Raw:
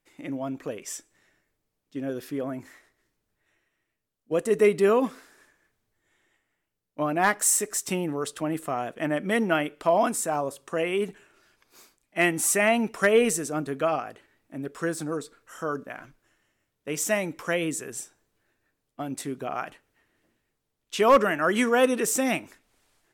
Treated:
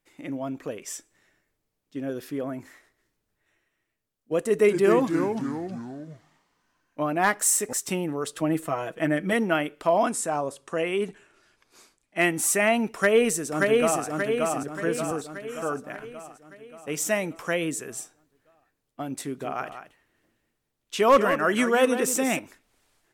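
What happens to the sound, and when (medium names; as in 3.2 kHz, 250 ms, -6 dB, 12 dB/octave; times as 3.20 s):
4.46–7.73 s: ever faster or slower copies 226 ms, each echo -3 st, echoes 3, each echo -6 dB
8.34–9.33 s: comb 6.2 ms, depth 67%
10.04–12.18 s: low-pass 11 kHz 24 dB/octave
12.90–14.05 s: echo throw 580 ms, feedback 55%, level -2 dB
14.63–15.11 s: three bands expanded up and down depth 40%
19.22–22.39 s: delay 186 ms -10 dB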